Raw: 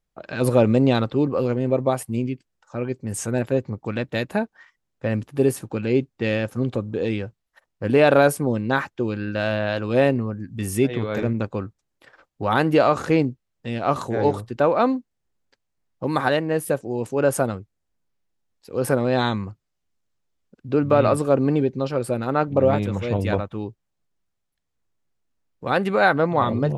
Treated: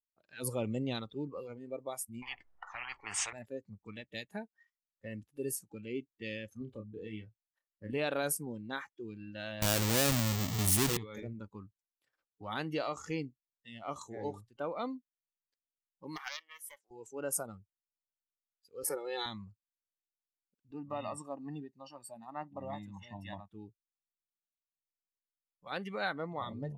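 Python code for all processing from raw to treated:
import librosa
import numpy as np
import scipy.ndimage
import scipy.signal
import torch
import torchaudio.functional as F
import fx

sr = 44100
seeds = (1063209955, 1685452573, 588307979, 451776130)

y = fx.chain(x, sr, fx.lowpass(hz=1600.0, slope=12),
    fx.peak_eq(hz=860.0, db=13.0, octaves=2.1),
    fx.spectral_comp(ratio=10.0), at=(2.22, 3.33))
y = fx.chain(y, sr, fx.high_shelf(hz=4000.0, db=-9.0),
    fx.doubler(ms=28.0, db=-7.0), at=(6.58, 7.93))
y = fx.chain(y, sr, fx.halfwave_hold(),
    fx.high_shelf(hz=10000.0, db=-6.5),
    fx.env_flatten(amount_pct=70), at=(9.62, 10.97))
y = fx.chain(y, sr, fx.highpass(hz=1100.0, slope=12),
    fx.high_shelf(hz=9600.0, db=-10.0),
    fx.doppler_dist(depth_ms=0.26), at=(16.16, 16.91))
y = fx.chain(y, sr, fx.steep_highpass(hz=160.0, slope=48),
    fx.comb(ms=2.3, depth=0.73), at=(18.83, 19.26))
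y = fx.chain(y, sr, fx.highpass(hz=280.0, slope=6),
    fx.high_shelf(hz=3100.0, db=-7.0),
    fx.comb(ms=1.1, depth=0.69), at=(20.71, 23.49))
y = F.preemphasis(torch.from_numpy(y), 0.9).numpy()
y = fx.noise_reduce_blind(y, sr, reduce_db=16)
y = fx.low_shelf(y, sr, hz=440.0, db=8.5)
y = y * librosa.db_to_amplitude(-4.5)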